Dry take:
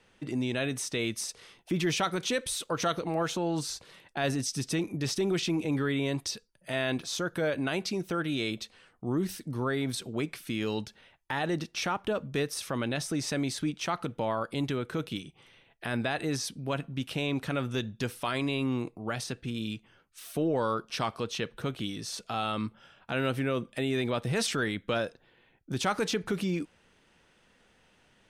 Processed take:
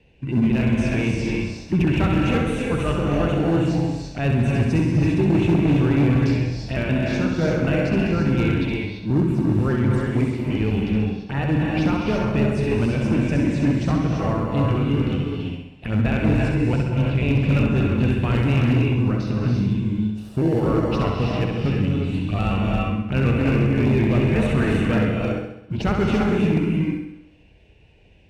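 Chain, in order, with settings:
pitch shifter gated in a rhythm −2 semitones, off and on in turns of 123 ms
phaser swept by the level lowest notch 200 Hz, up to 4,900 Hz, full sweep at −29 dBFS
parametric band 2,700 Hz +13.5 dB 0.81 octaves
flutter between parallel walls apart 11.3 metres, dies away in 0.77 s
in parallel at −8.5 dB: decimation without filtering 35×
on the sum: RIAA equalisation playback
reverb whose tail is shaped and stops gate 370 ms rising, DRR 0 dB
hard clipping −12.5 dBFS, distortion −18 dB
high-pass filter 48 Hz
notch filter 3,200 Hz, Q 9.3

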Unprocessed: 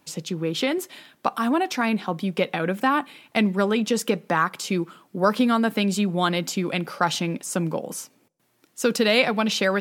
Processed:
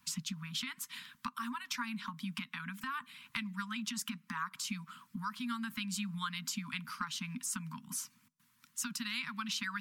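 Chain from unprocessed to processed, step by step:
harmonic and percussive parts rebalanced harmonic −8 dB
downward compressor 4 to 1, threshold −36 dBFS, peak gain reduction 17 dB
Chebyshev band-stop filter 250–960 Hz, order 5
level +1 dB

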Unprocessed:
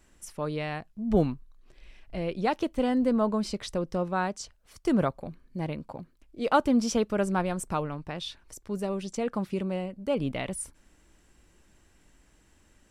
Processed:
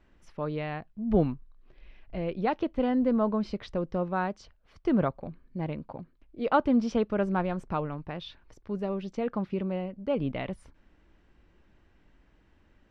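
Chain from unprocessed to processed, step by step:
high-frequency loss of the air 260 metres

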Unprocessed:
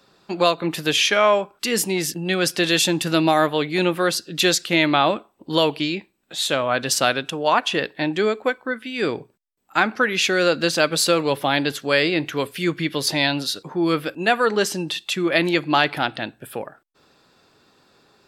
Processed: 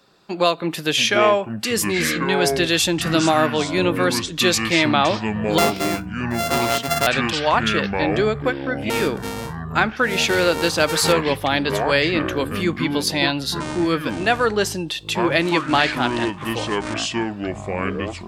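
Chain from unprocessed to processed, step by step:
0:05.58–0:07.07: samples sorted by size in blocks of 64 samples
delay with pitch and tempo change per echo 537 ms, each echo −7 semitones, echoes 3, each echo −6 dB

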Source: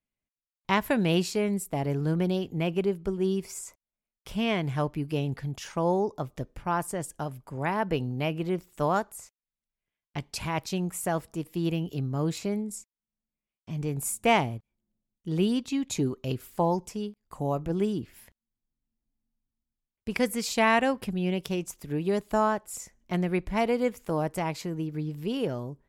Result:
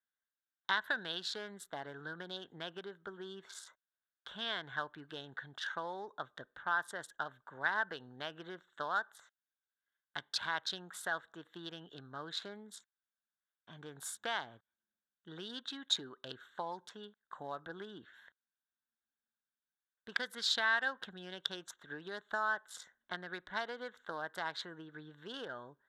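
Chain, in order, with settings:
adaptive Wiener filter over 9 samples
downward compressor, threshold −28 dBFS, peak gain reduction 11 dB
pair of resonant band-passes 2,400 Hz, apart 1.2 octaves
level +12.5 dB

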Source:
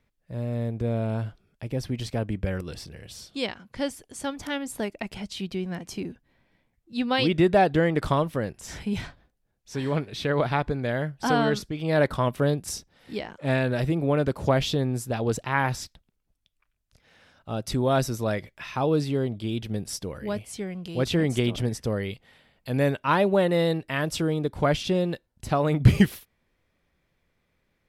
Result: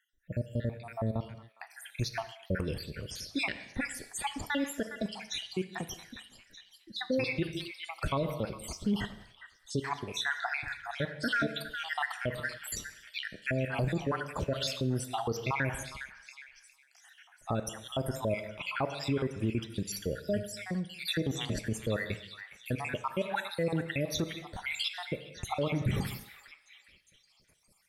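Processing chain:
time-frequency cells dropped at random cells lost 72%
reverb whose tail is shaped and stops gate 300 ms falling, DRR 11 dB
in parallel at −1.5 dB: downward compressor, threshold −40 dBFS, peak gain reduction 26 dB
on the sum: dynamic equaliser 1,600 Hz, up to +3 dB, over −42 dBFS, Q 0.77
brickwall limiter −21.5 dBFS, peak gain reduction 16.5 dB
on a send: echo through a band-pass that steps 409 ms, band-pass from 1,700 Hz, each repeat 0.7 octaves, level −9 dB

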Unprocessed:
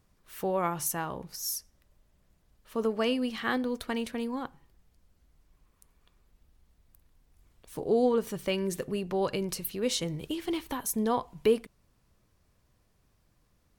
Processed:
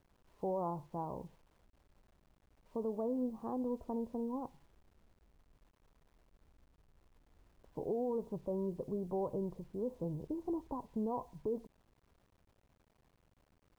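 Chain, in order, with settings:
Chebyshev low-pass filter 1,000 Hz, order 5
brickwall limiter −24.5 dBFS, peak gain reduction 9.5 dB
bit reduction 11 bits
level −4.5 dB

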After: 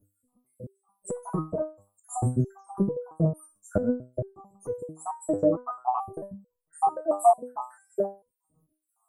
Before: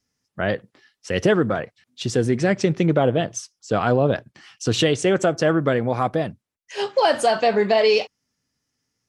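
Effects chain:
time-frequency cells dropped at random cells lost 75%
0:03.72–0:06.12: high-shelf EQ 3,600 Hz −10.5 dB
Chebyshev band-stop filter 1,200–8,100 Hz, order 5
downward compressor 6 to 1, threshold −36 dBFS, peak gain reduction 19.5 dB
boost into a limiter +25.5 dB
step-sequenced resonator 4.5 Hz 100–490 Hz

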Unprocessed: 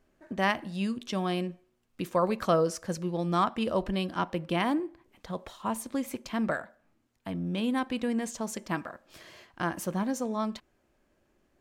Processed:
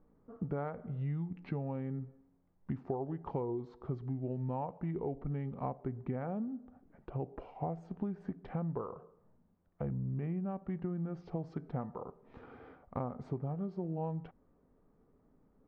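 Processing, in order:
low-pass filter 1,200 Hz 12 dB per octave
downward compressor 12 to 1, threshold −36 dBFS, peak gain reduction 16 dB
wrong playback speed 45 rpm record played at 33 rpm
level +2.5 dB

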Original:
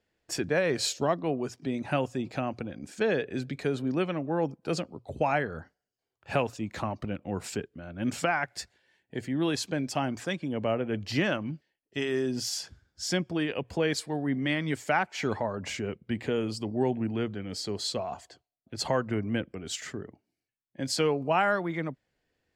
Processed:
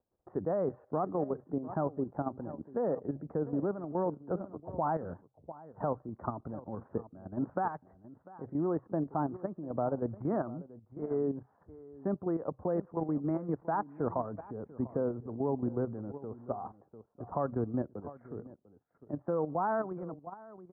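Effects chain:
Butterworth low-pass 1,200 Hz 48 dB per octave
slap from a distant wall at 130 metres, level −15 dB
wrong playback speed 44.1 kHz file played as 48 kHz
output level in coarse steps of 10 dB

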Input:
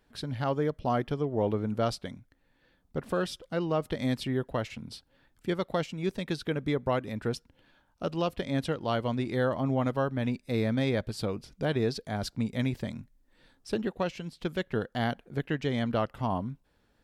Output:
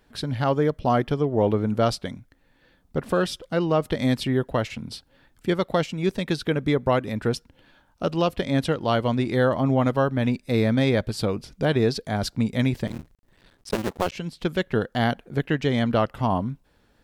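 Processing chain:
0:12.87–0:14.12: sub-harmonics by changed cycles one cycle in 2, muted
level +7 dB

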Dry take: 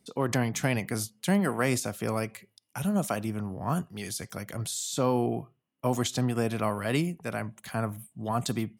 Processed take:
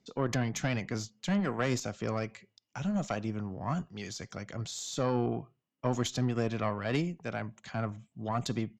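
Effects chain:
downsampling to 16,000 Hz
tube saturation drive 16 dB, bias 0.65

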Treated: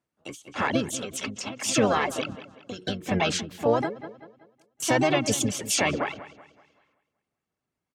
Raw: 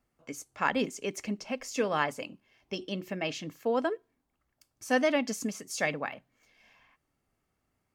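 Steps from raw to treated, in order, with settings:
noise gate −57 dBFS, range −19 dB
Chebyshev band-pass filter 140–8,500 Hz, order 2
reverb reduction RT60 0.76 s
in parallel at −0.5 dB: downward compressor 10 to 1, threshold −38 dBFS, peak gain reduction 16.5 dB
on the sum: brickwall limiter −22.5 dBFS, peak gain reduction 10.5 dB
pitch-shifted copies added −12 semitones −6 dB, +4 semitones −5 dB
on a send: delay with a low-pass on its return 189 ms, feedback 39%, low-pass 4,000 Hz, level −16.5 dB
on the sum: every ending faded ahead of time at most 130 dB per second
level +8 dB

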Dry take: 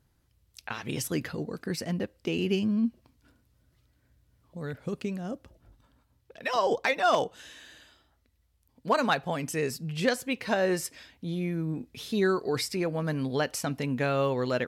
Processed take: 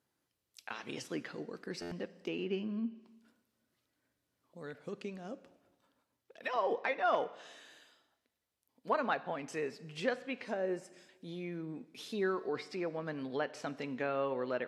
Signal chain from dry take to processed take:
high-pass filter 260 Hz 12 dB per octave
treble cut that deepens with the level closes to 2,400 Hz, closed at −26.5 dBFS
0:10.45–0:11.09: octave-band graphic EQ 1,000/2,000/4,000/8,000 Hz −7/−5/−10/+8 dB
four-comb reverb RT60 1.2 s, combs from 31 ms, DRR 16.5 dB
buffer that repeats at 0:01.81, samples 512, times 8
level −6.5 dB
AAC 64 kbit/s 32,000 Hz

